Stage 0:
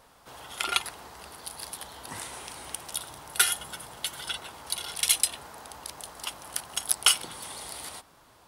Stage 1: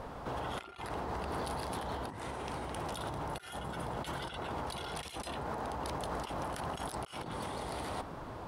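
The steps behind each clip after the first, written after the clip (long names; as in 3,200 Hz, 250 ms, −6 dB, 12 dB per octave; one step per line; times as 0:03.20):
low-pass filter 1,400 Hz 6 dB per octave
tilt shelving filter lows +4 dB, about 860 Hz
compressor whose output falls as the input rises −50 dBFS, ratio −1
level +9 dB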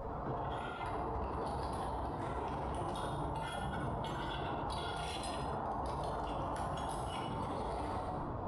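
expanding power law on the bin magnitudes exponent 1.6
reverb whose tail is shaped and stops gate 320 ms falling, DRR −2 dB
brickwall limiter −30.5 dBFS, peak gain reduction 8 dB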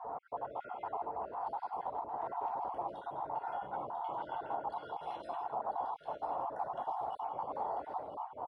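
time-frequency cells dropped at random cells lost 36%
resonant band-pass 790 Hz, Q 2.5
on a send: single-tap delay 995 ms −9 dB
on the sum: level +6 dB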